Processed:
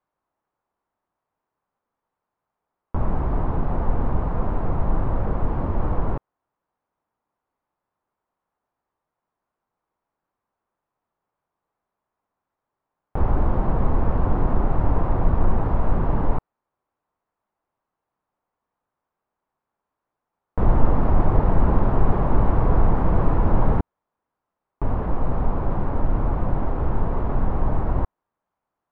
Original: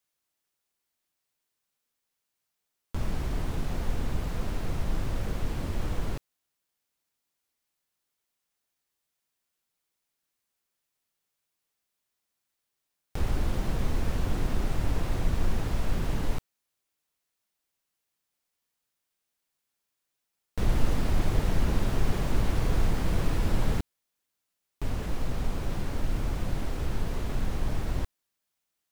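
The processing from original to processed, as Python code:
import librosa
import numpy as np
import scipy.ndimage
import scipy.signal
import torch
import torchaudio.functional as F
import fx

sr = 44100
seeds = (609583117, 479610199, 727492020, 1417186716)

y = fx.lowpass_res(x, sr, hz=1000.0, q=1.9)
y = y * librosa.db_to_amplitude(7.5)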